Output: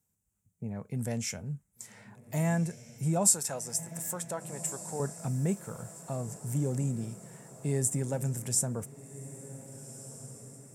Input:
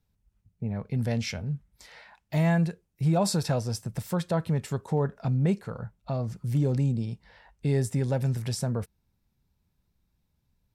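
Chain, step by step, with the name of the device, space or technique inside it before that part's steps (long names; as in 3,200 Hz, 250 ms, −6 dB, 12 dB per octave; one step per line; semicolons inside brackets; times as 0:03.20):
0:03.27–0:05.00: high-pass filter 650 Hz 6 dB per octave
budget condenser microphone (high-pass filter 110 Hz; high shelf with overshoot 5,700 Hz +10.5 dB, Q 3)
feedback delay with all-pass diffusion 1,547 ms, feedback 50%, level −14.5 dB
level −4.5 dB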